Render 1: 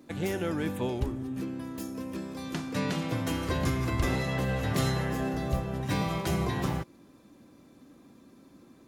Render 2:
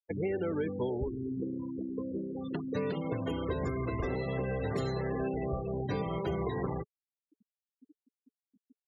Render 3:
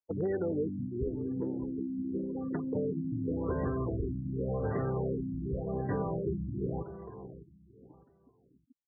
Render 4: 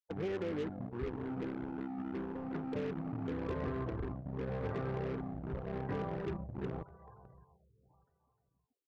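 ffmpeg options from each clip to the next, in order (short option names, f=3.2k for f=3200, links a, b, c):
-filter_complex "[0:a]afftfilt=real='re*gte(hypot(re,im),0.0282)':imag='im*gte(hypot(re,im),0.0282)':win_size=1024:overlap=0.75,equalizer=f=430:t=o:w=0.3:g=13,acrossover=split=470|1100[a][b][c];[a]acompressor=threshold=-33dB:ratio=4[d];[b]acompressor=threshold=-39dB:ratio=4[e];[c]acompressor=threshold=-46dB:ratio=4[f];[d][e][f]amix=inputs=3:normalize=0"
-filter_complex "[0:a]asoftclip=type=hard:threshold=-25.5dB,asplit=2[a][b];[b]adelay=607,lowpass=f=4.9k:p=1,volume=-13dB,asplit=2[c][d];[d]adelay=607,lowpass=f=4.9k:p=1,volume=0.29,asplit=2[e][f];[f]adelay=607,lowpass=f=4.9k:p=1,volume=0.29[g];[a][c][e][g]amix=inputs=4:normalize=0,afftfilt=real='re*lt(b*sr/1024,310*pow(2000/310,0.5+0.5*sin(2*PI*0.89*pts/sr)))':imag='im*lt(b*sr/1024,310*pow(2000/310,0.5+0.5*sin(2*PI*0.89*pts/sr)))':win_size=1024:overlap=0.75,volume=1dB"
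-filter_complex "[0:a]acrossover=split=150|600[a][b][c];[b]acrusher=bits=5:mix=0:aa=0.5[d];[c]aecho=1:1:304:0.398[e];[a][d][e]amix=inputs=3:normalize=0,volume=-5.5dB"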